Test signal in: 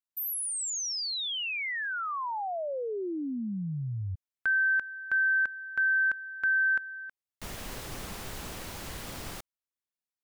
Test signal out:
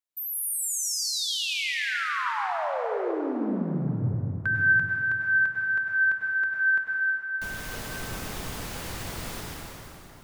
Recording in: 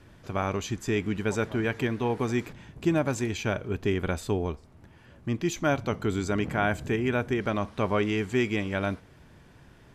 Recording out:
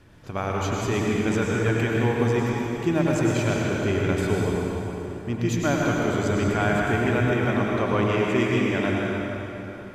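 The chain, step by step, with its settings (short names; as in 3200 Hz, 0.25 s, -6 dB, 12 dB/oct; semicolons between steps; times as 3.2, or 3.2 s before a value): plate-style reverb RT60 3.5 s, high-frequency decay 0.75×, pre-delay 85 ms, DRR -3 dB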